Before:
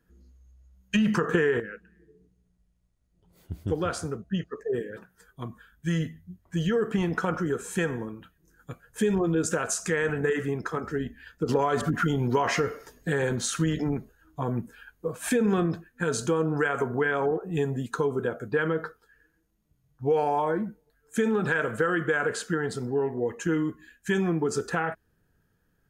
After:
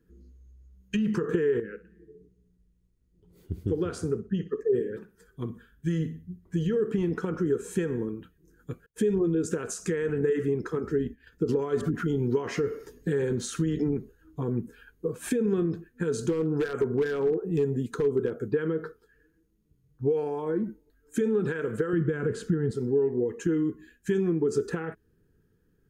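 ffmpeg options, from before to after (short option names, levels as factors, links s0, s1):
-filter_complex "[0:a]asettb=1/sr,asplit=3[s0][s1][s2];[s0]atrim=end=1.704[s3];[s1]atrim=start=1.7:end=6.81,asetpts=PTS-STARTPTS,afade=t=in:d=0.004:c=qsin,afade=t=out:st=5.106:d=0.004:c=qsin,aecho=1:1:62|124|186:0.158|0.0444|0.0124,atrim=end_sample=225351[s4];[s2]atrim=start=6.806[s5];[s3][s4]acrossfade=d=0.004:c1=hsin:c2=qsin[s6];[s6][s5]acrossfade=d=0.004:c1=qsin:c2=hsin,asettb=1/sr,asplit=3[s7][s8][s9];[s7]atrim=end=8.864[s10];[s8]atrim=start=8.86:end=11.32,asetpts=PTS-STARTPTS,afade=t=in:d=0.004:c=qsin,afade=t=out:st=2.456:d=0.004:c=qsin,agate=range=0.0224:threshold=0.00631:ratio=3:release=100:detection=peak[s11];[s9]atrim=start=11.316[s12];[s10][s11]acrossfade=d=0.004:c1=hsin:c2=qsin[s13];[s13][s12]acrossfade=d=0.004:c1=qsin:c2=hsin,asettb=1/sr,asplit=3[s14][s15][s16];[s14]atrim=end=16.174[s17];[s15]atrim=start=16.17:end=18.5,asetpts=PTS-STARTPTS,afade=t=in:d=0.004:c=qsin,afade=t=out:st=2.326:d=0.004:c=qsin,aeval=exprs='0.112*(abs(mod(val(0)/0.112+3,4)-2)-1)':c=same[s18];[s16]atrim=start=18.496[s19];[s17][s18]acrossfade=d=0.004:c1=hsin:c2=qsin[s20];[s20][s19]acrossfade=d=0.004:c1=qsin:c2=hsin,asettb=1/sr,asplit=3[s21][s22][s23];[s21]atrim=end=20.634[s24];[s22]atrim=start=20.63:end=21.21,asetpts=PTS-STARTPTS,afade=t=in:d=0.004:c=qsin,afade=t=out:st=0.576:d=0.004:c=qsin,aecho=1:1:3.2:0.56,atrim=end_sample=25578[s25];[s23]atrim=start=21.206[s26];[s24][s25]acrossfade=d=0.004:c1=hsin:c2=qsin[s27];[s27][s26]acrossfade=d=0.004:c1=qsin:c2=hsin,asettb=1/sr,asplit=3[s28][s29][s30];[s28]atrim=end=21.934[s31];[s29]atrim=start=21.93:end=22.71,asetpts=PTS-STARTPTS,afade=t=in:d=0.004:c=qsin,afade=t=out:st=0.776:d=0.004:c=qsin,bass=f=250:g=15,treble=f=4000:g=-3[s32];[s30]atrim=start=22.706[s33];[s31][s32]acrossfade=d=0.004:c1=hsin:c2=qsin[s34];[s34][s33]acrossfade=d=0.004:c1=qsin:c2=hsin,acompressor=threshold=0.0398:ratio=4,lowshelf=f=520:t=q:w=3:g=6.5,volume=0.631"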